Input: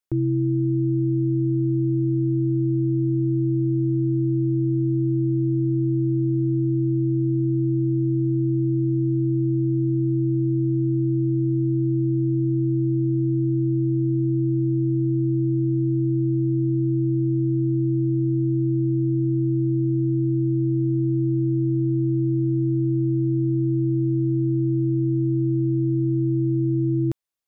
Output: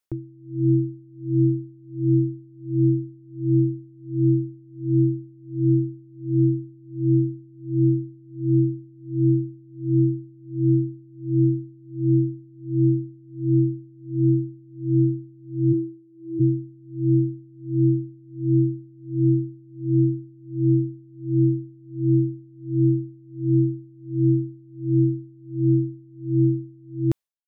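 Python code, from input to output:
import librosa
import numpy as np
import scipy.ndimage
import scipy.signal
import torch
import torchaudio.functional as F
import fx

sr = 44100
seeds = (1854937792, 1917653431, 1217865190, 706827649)

y = fx.highpass(x, sr, hz=fx.line((15.72, 220.0), (16.39, 410.0)), slope=12, at=(15.72, 16.39), fade=0.02)
y = y * 10.0 ** (-32 * (0.5 - 0.5 * np.cos(2.0 * np.pi * 1.4 * np.arange(len(y)) / sr)) / 20.0)
y = F.gain(torch.from_numpy(y), 5.0).numpy()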